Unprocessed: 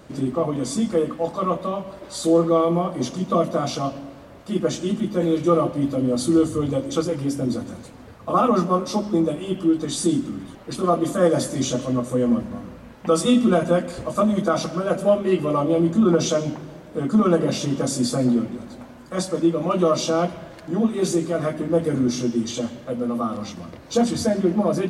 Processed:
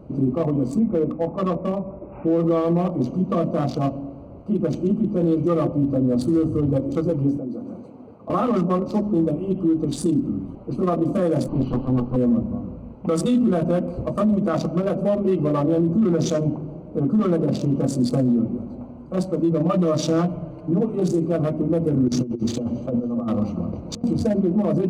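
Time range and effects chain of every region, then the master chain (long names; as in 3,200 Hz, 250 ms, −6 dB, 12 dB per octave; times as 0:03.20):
0:00.79–0:02.40: high-shelf EQ 2,900 Hz −9.5 dB + bad sample-rate conversion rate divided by 8×, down none, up filtered
0:07.37–0:08.30: high-pass filter 220 Hz + downward compressor 3 to 1, threshold −32 dBFS
0:11.48–0:12.16: lower of the sound and its delayed copy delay 0.67 ms + Butterworth low-pass 4,700 Hz 48 dB per octave
0:19.51–0:21.08: comb filter 6.7 ms, depth 75% + floating-point word with a short mantissa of 8 bits
0:22.08–0:24.04: compressor whose output falls as the input rises −27 dBFS, ratio −0.5 + repeating echo 280 ms, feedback 31%, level −13.5 dB
whole clip: adaptive Wiener filter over 25 samples; low-shelf EQ 430 Hz +7 dB; brickwall limiter −12.5 dBFS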